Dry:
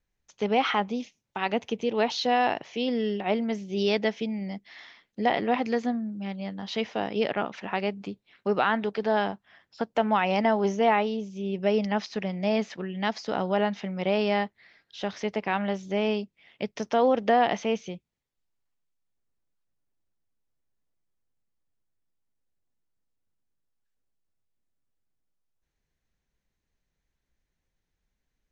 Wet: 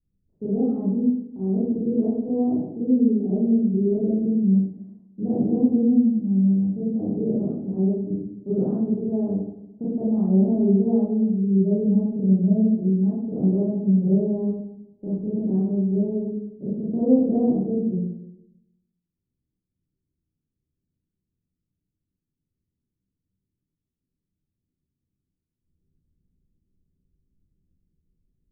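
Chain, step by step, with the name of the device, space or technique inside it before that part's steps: next room (LPF 340 Hz 24 dB/oct; reverb RT60 0.80 s, pre-delay 25 ms, DRR -10 dB)

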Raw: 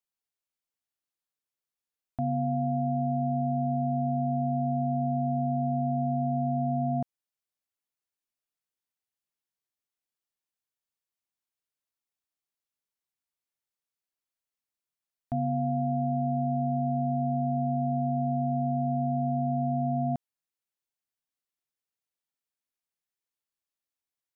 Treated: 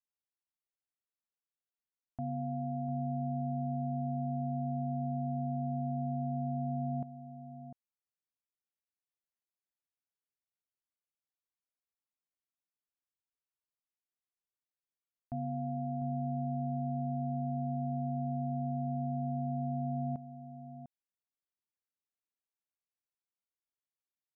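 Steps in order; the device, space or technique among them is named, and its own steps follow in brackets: shout across a valley (air absorption 430 m; outdoor echo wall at 120 m, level -11 dB); gain -7.5 dB

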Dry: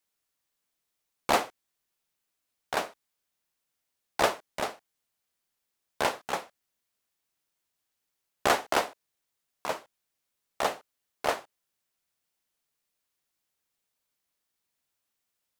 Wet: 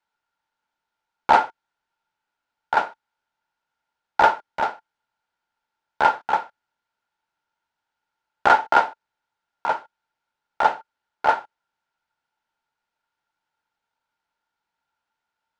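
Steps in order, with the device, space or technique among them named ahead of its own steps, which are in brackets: inside a cardboard box (LPF 4000 Hz 12 dB/oct; small resonant body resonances 890/1400 Hz, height 18 dB, ringing for 35 ms); gain +1 dB

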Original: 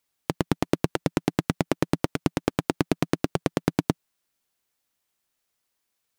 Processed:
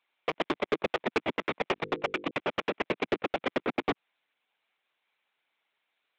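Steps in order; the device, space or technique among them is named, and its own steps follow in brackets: talking toy (LPC vocoder at 8 kHz; HPF 410 Hz 12 dB/oct; bell 2300 Hz +6 dB 0.31 oct; soft clip -24 dBFS, distortion -13 dB); 1.74–2.31 notches 50/100/150/200/250/300/350/400/450/500 Hz; gain +5 dB

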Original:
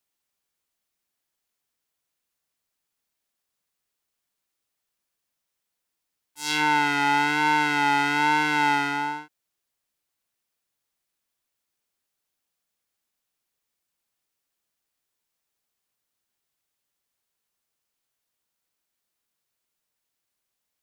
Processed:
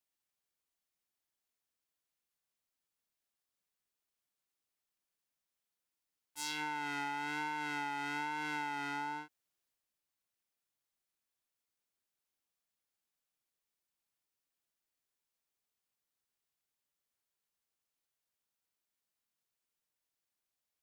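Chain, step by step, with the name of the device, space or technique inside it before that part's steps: drum-bus smash (transient shaper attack +8 dB, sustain +3 dB; compressor 12:1, threshold -24 dBFS, peak gain reduction 10.5 dB; soft clip -15 dBFS, distortion -22 dB); gain -8.5 dB

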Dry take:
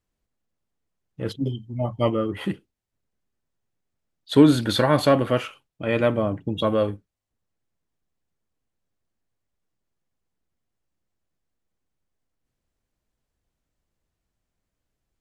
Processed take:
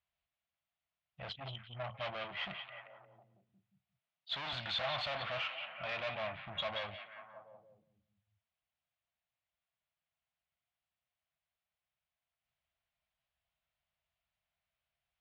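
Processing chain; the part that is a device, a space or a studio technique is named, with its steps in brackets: 2.24–4.53 HPF 120 Hz 24 dB/oct; scooped metal amplifier (tube stage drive 31 dB, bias 0.5; speaker cabinet 99–3500 Hz, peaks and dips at 100 Hz -6 dB, 440 Hz -7 dB, 670 Hz +9 dB, 1700 Hz -3 dB; passive tone stack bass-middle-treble 10-0-10); delay with a stepping band-pass 0.178 s, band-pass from 2800 Hz, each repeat -0.7 oct, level -5 dB; gain +5 dB

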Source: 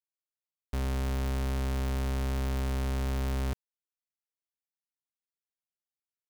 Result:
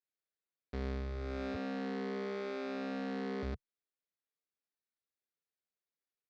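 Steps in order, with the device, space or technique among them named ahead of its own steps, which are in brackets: 1.54–3.43 Chebyshev high-pass 190 Hz, order 8; barber-pole flanger into a guitar amplifier (endless flanger 9.7 ms +0.78 Hz; soft clip -34.5 dBFS, distortion -11 dB; speaker cabinet 88–4400 Hz, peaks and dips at 130 Hz -9 dB, 440 Hz +5 dB, 940 Hz -9 dB, 3000 Hz -8 dB); gain +4 dB

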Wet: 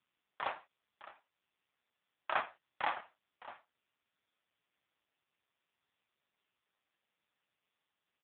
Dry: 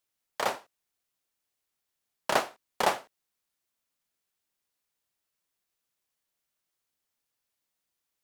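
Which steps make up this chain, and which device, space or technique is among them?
Bessel high-pass 880 Hz, order 2; 2.39–2.95 dynamic EQ 5200 Hz, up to -3 dB, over -50 dBFS, Q 1.8; satellite phone (BPF 310–3100 Hz; echo 0.612 s -16 dB; AMR-NB 5.15 kbps 8000 Hz)

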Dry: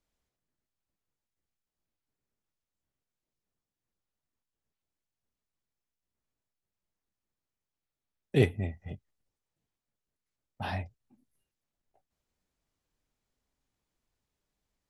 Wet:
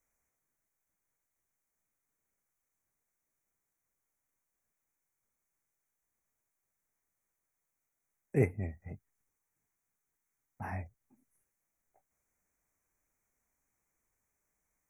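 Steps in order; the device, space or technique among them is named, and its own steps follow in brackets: noise-reduction cassette on a plain deck (mismatched tape noise reduction encoder only; wow and flutter; white noise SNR 42 dB); elliptic band-stop 2300–6000 Hz; 8.92–10.76 bell 570 Hz -8 dB 0.25 oct; gain -4 dB

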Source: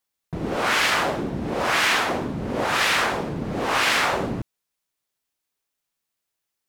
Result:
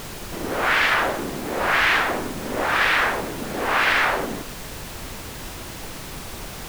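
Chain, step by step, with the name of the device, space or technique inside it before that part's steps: horn gramophone (BPF 240–3500 Hz; bell 1700 Hz +4.5 dB; wow and flutter; pink noise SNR 10 dB)

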